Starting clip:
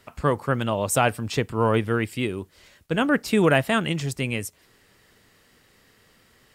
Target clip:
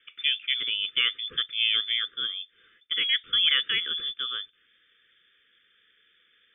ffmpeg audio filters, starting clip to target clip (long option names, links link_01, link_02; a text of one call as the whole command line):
ffmpeg -i in.wav -af "aeval=exprs='0.531*(cos(1*acos(clip(val(0)/0.531,-1,1)))-cos(1*PI/2))+0.0299*(cos(2*acos(clip(val(0)/0.531,-1,1)))-cos(2*PI/2))':channel_layout=same,lowpass=frequency=3100:width_type=q:width=0.5098,lowpass=frequency=3100:width_type=q:width=0.6013,lowpass=frequency=3100:width_type=q:width=0.9,lowpass=frequency=3100:width_type=q:width=2.563,afreqshift=-3600,asuperstop=centerf=790:order=12:qfactor=1.1,volume=-4.5dB" out.wav